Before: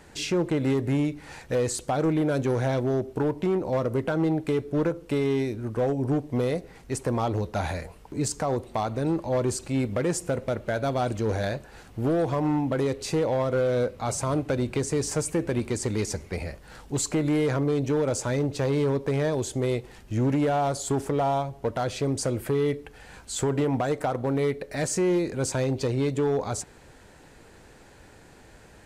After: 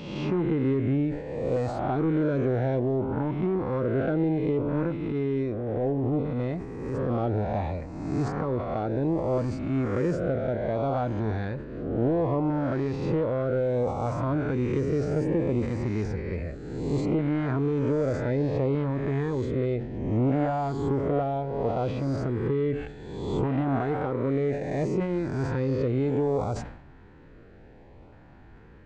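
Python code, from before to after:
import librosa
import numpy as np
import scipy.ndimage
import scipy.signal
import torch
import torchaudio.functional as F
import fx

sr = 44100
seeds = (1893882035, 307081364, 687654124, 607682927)

y = fx.spec_swells(x, sr, rise_s=1.33)
y = fx.filter_lfo_notch(y, sr, shape='saw_up', hz=0.64, low_hz=360.0, high_hz=1800.0, q=2.1)
y = fx.transient(y, sr, attack_db=-12, sustain_db=1, at=(5.04, 7.16))
y = fx.spacing_loss(y, sr, db_at_10k=42)
y = fx.sustainer(y, sr, db_per_s=75.0)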